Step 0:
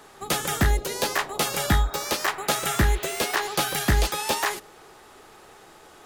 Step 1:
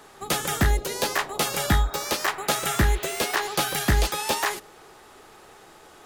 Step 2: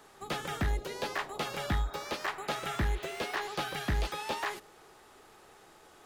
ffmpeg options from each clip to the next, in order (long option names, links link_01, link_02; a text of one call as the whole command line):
ffmpeg -i in.wav -af anull out.wav
ffmpeg -i in.wav -filter_complex "[0:a]acrossover=split=4400[link_01][link_02];[link_02]acompressor=threshold=-42dB:ratio=4:attack=1:release=60[link_03];[link_01][link_03]amix=inputs=2:normalize=0,asoftclip=type=tanh:threshold=-15dB,volume=-7.5dB" out.wav